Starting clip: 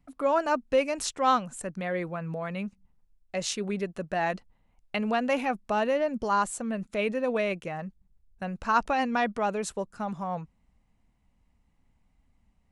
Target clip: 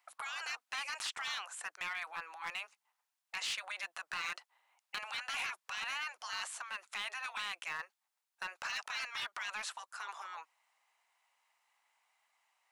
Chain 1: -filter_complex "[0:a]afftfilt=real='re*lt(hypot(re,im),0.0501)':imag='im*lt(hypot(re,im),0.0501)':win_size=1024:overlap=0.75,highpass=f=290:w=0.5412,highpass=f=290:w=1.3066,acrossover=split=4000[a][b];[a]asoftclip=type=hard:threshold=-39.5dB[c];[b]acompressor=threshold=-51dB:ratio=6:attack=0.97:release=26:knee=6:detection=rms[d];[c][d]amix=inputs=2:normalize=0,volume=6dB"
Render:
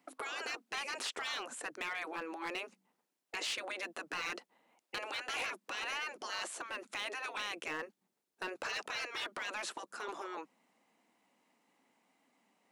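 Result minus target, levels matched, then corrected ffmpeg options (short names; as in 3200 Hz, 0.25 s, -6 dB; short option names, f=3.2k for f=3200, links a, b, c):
250 Hz band +17.0 dB
-filter_complex "[0:a]afftfilt=real='re*lt(hypot(re,im),0.0501)':imag='im*lt(hypot(re,im),0.0501)':win_size=1024:overlap=0.75,highpass=f=840:w=0.5412,highpass=f=840:w=1.3066,acrossover=split=4000[a][b];[a]asoftclip=type=hard:threshold=-39.5dB[c];[b]acompressor=threshold=-51dB:ratio=6:attack=0.97:release=26:knee=6:detection=rms[d];[c][d]amix=inputs=2:normalize=0,volume=6dB"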